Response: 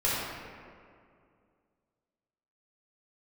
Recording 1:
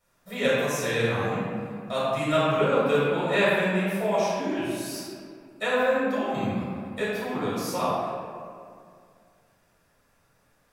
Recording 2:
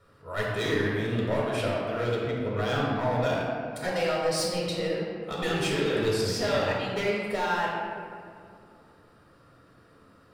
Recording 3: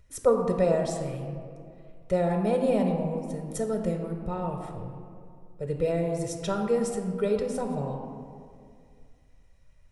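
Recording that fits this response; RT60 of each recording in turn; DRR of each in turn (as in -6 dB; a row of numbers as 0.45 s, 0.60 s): 1; 2.3 s, 2.3 s, 2.3 s; -9.5 dB, -4.5 dB, 3.5 dB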